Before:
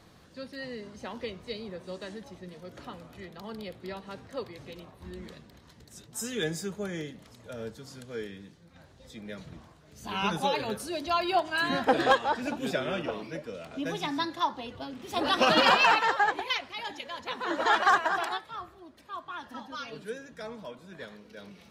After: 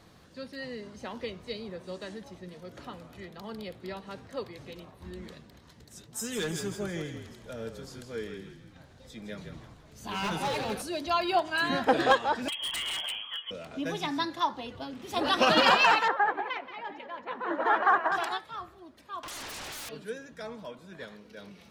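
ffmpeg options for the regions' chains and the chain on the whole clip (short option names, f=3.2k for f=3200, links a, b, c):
-filter_complex "[0:a]asettb=1/sr,asplit=3[a][b][c];[a]atrim=end=6.094[d];[b]atrim=start=6.09:end=10.82,asetpts=PTS-STARTPTS,afade=t=in:d=0.004:c=qsin,afade=t=out:st=4.726:d=0.004:c=qsin,asoftclip=type=hard:threshold=-28dB,asplit=6[e][f][g][h][i][j];[f]adelay=161,afreqshift=-41,volume=-8dB[k];[g]adelay=322,afreqshift=-82,volume=-16dB[l];[h]adelay=483,afreqshift=-123,volume=-23.9dB[m];[i]adelay=644,afreqshift=-164,volume=-31.9dB[n];[j]adelay=805,afreqshift=-205,volume=-39.8dB[o];[e][k][l][m][n][o]amix=inputs=6:normalize=0,atrim=end_sample=208593[p];[c]atrim=start=10.816[q];[d][p]acrossfade=d=0.004:c1=hsin:c2=qsin[r];[r][q]acrossfade=d=0.004:c1=qsin:c2=hsin,asettb=1/sr,asplit=3[s][t][u];[s]atrim=end=12.484[v];[t]atrim=start=12.48:end=13.51,asetpts=PTS-STARTPTS,afade=t=in:d=0.004:c=qsin,afade=t=out:st=1.026:d=0.004:c=qsin,lowpass=f=3k:t=q:w=0.5098,lowpass=f=3k:t=q:w=0.6013,lowpass=f=3k:t=q:w=0.9,lowpass=f=3k:t=q:w=2.563,afreqshift=-3500,aeval=exprs='0.0398*(abs(mod(val(0)/0.0398+3,4)-2)-1)':c=same[w];[u]atrim=start=13.506[x];[v][w]acrossfade=d=0.004:c1=hsin:c2=qsin[y];[y][x]acrossfade=d=0.004:c1=qsin:c2=hsin,asettb=1/sr,asplit=3[z][aa][ab];[z]atrim=end=16.084[ac];[aa]atrim=start=16.08:end=18.12,asetpts=PTS-STARTPTS,afade=t=in:d=0.004:c=qsin,afade=t=out:st=2.036:d=0.004:c=qsin,acrossover=split=160 2200:gain=0.126 1 0.0708[ad][ae][af];[ad][ae][af]amix=inputs=3:normalize=0,aecho=1:1:178:0.251,atrim=end_sample=89964[ag];[ab]atrim=start=18.116[ah];[ac][ag]acrossfade=d=0.004:c1=hsin:c2=qsin[ai];[ai][ah]acrossfade=d=0.004:c1=qsin:c2=hsin,asettb=1/sr,asplit=3[aj][ak][al];[aj]atrim=end=19.234[am];[ak]atrim=start=19.23:end=19.89,asetpts=PTS-STARTPTS,afade=t=in:d=0.004:c=qsin,afade=t=out:st=0.656:d=0.004:c=qsin,equalizer=f=180:t=o:w=2.5:g=-7.5,acompressor=threshold=-46dB:ratio=6:attack=3.2:release=140:knee=1:detection=peak,aeval=exprs='0.0133*sin(PI/2*8.91*val(0)/0.0133)':c=same[an];[al]atrim=start=19.886[ao];[am][an]acrossfade=d=0.004:c1=hsin:c2=qsin[ap];[ap][ao]acrossfade=d=0.004:c1=qsin:c2=hsin"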